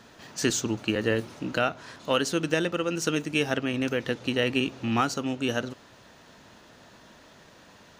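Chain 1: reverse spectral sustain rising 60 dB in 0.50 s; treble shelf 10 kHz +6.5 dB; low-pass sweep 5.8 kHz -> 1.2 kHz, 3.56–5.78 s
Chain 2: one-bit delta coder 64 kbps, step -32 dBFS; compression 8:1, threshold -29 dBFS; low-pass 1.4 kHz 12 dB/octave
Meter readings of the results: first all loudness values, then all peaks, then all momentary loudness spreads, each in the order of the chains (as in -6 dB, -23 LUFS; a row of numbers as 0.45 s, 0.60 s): -23.5 LUFS, -37.0 LUFS; -5.5 dBFS, -18.5 dBFS; 8 LU, 7 LU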